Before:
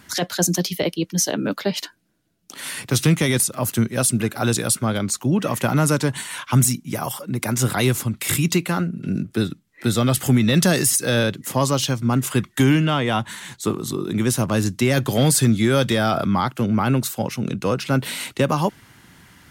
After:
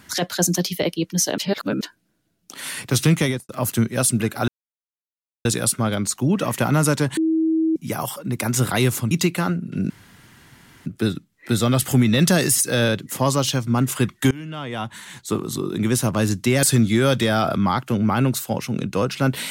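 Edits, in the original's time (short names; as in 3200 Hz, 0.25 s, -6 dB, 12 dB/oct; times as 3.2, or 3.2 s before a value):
1.38–1.81 reverse
3.22–3.49 studio fade out
4.48 insert silence 0.97 s
6.2–6.79 bleep 321 Hz -16 dBFS
8.14–8.42 cut
9.21 insert room tone 0.96 s
12.66–13.81 fade in, from -24 dB
14.98–15.32 cut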